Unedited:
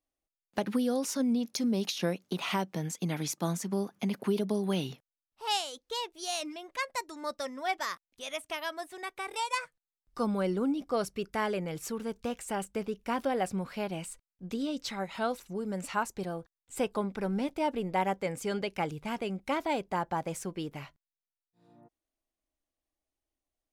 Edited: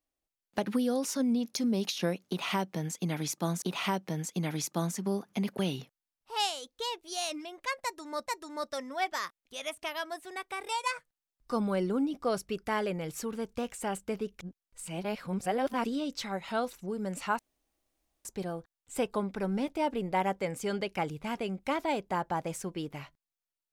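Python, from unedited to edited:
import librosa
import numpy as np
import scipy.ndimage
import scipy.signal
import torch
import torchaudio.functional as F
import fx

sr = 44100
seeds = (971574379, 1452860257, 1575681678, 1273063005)

y = fx.edit(x, sr, fx.repeat(start_s=2.28, length_s=1.34, count=2),
    fx.cut(start_s=4.25, length_s=0.45),
    fx.repeat(start_s=6.93, length_s=0.44, count=2),
    fx.reverse_span(start_s=13.07, length_s=1.45),
    fx.insert_room_tone(at_s=16.06, length_s=0.86), tone=tone)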